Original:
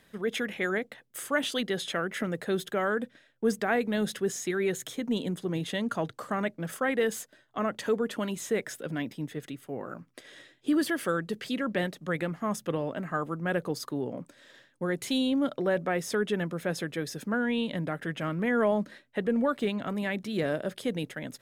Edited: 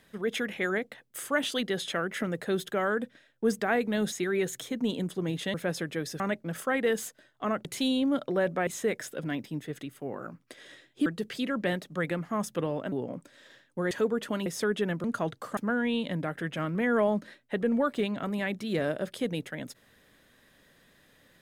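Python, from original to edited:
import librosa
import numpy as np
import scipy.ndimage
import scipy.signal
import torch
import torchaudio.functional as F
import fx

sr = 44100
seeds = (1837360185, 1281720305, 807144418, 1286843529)

y = fx.edit(x, sr, fx.cut(start_s=4.12, length_s=0.27),
    fx.swap(start_s=5.81, length_s=0.53, other_s=16.55, other_length_s=0.66),
    fx.swap(start_s=7.79, length_s=0.55, other_s=14.95, other_length_s=1.02),
    fx.cut(start_s=10.73, length_s=0.44),
    fx.cut(start_s=13.03, length_s=0.93), tone=tone)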